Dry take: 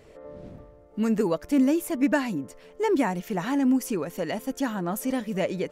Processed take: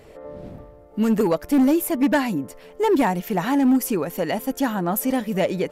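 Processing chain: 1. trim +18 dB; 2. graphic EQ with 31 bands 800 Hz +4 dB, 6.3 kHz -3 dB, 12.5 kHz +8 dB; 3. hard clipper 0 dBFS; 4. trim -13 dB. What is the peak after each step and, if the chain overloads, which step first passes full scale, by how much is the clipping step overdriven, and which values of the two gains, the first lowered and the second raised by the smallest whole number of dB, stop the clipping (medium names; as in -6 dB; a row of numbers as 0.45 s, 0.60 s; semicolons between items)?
+8.0 dBFS, +8.0 dBFS, 0.0 dBFS, -13.0 dBFS; step 1, 8.0 dB; step 1 +10 dB, step 4 -5 dB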